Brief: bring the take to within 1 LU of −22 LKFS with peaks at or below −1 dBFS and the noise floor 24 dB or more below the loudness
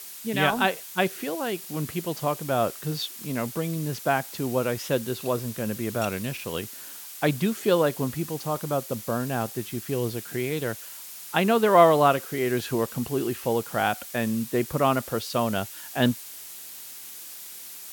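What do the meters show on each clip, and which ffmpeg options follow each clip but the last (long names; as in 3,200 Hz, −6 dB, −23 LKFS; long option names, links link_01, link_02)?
background noise floor −41 dBFS; target noise floor −50 dBFS; integrated loudness −26.0 LKFS; sample peak −4.5 dBFS; target loudness −22.0 LKFS
→ -af "afftdn=noise_reduction=9:noise_floor=-41"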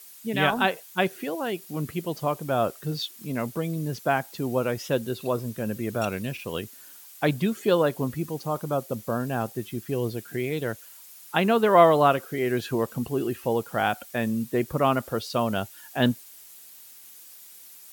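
background noise floor −48 dBFS; target noise floor −51 dBFS
→ -af "afftdn=noise_reduction=6:noise_floor=-48"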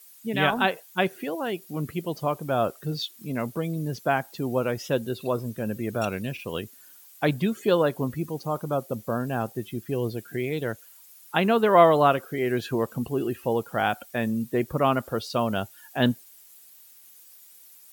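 background noise floor −52 dBFS; integrated loudness −26.5 LKFS; sample peak −4.5 dBFS; target loudness −22.0 LKFS
→ -af "volume=4.5dB,alimiter=limit=-1dB:level=0:latency=1"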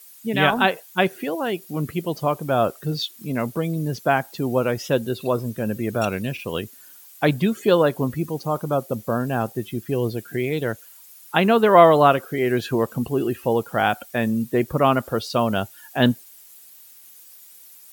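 integrated loudness −22.0 LKFS; sample peak −1.0 dBFS; background noise floor −47 dBFS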